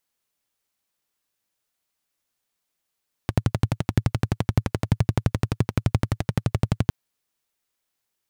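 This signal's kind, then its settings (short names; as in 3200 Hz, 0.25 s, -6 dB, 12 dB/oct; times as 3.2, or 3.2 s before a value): single-cylinder engine model, steady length 3.61 s, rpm 1400, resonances 110 Hz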